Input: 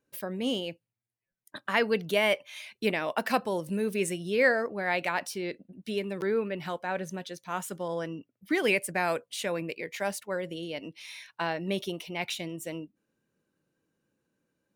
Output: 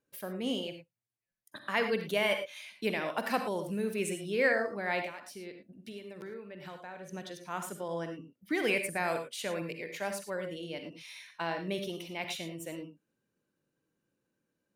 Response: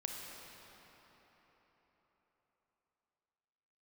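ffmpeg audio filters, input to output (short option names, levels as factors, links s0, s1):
-filter_complex "[0:a]asettb=1/sr,asplit=3[s0][s1][s2];[s0]atrim=end=5.014[s3];[s1]atrim=start=5.01:end=7.13,asetpts=PTS-STARTPTS,afade=t=in:d=0.004:c=qsin,afade=t=out:st=2.116:d=0.004:c=qsin,acompressor=threshold=0.0126:ratio=6[s4];[s2]atrim=start=7.126[s5];[s3][s4]acrossfade=d=0.004:c1=hsin:c2=qsin[s6];[s6][s5]acrossfade=d=0.004:c1=qsin:c2=hsin[s7];[1:a]atrim=start_sample=2205,atrim=end_sample=3528,asetrate=29988,aresample=44100[s8];[s7][s8]afir=irnorm=-1:irlink=0,volume=0.668"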